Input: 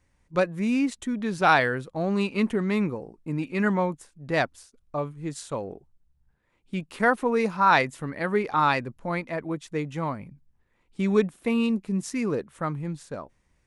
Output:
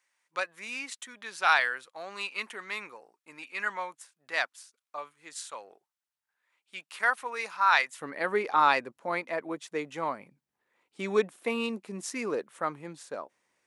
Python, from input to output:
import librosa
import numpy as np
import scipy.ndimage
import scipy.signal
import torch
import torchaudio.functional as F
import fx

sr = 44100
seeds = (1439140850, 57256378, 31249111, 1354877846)

y = fx.highpass(x, sr, hz=fx.steps((0.0, 1200.0), (8.01, 420.0)), slope=12)